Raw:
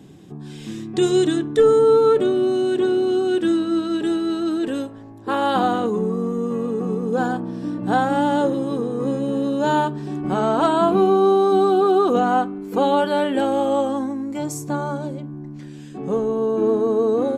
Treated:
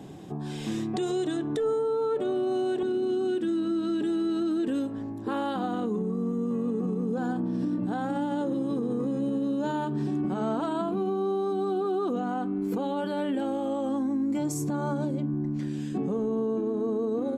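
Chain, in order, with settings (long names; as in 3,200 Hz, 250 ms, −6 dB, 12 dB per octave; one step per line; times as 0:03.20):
parametric band 730 Hz +8 dB 1.2 octaves, from 0:02.83 230 Hz
downward compressor, threshold −23 dBFS, peak gain reduction 14.5 dB
brickwall limiter −21.5 dBFS, peak gain reduction 7 dB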